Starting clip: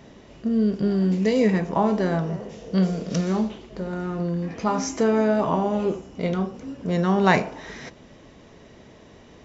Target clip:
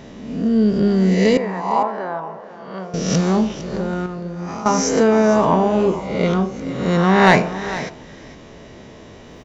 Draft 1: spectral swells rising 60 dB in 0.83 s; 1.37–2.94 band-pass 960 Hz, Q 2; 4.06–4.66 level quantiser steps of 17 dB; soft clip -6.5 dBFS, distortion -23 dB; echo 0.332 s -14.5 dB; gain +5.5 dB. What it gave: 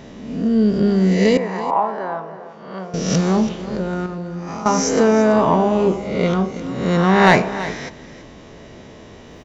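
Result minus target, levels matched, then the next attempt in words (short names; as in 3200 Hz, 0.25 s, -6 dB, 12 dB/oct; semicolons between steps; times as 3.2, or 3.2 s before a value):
echo 0.125 s early
spectral swells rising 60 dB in 0.83 s; 1.37–2.94 band-pass 960 Hz, Q 2; 4.06–4.66 level quantiser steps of 17 dB; soft clip -6.5 dBFS, distortion -23 dB; echo 0.457 s -14.5 dB; gain +5.5 dB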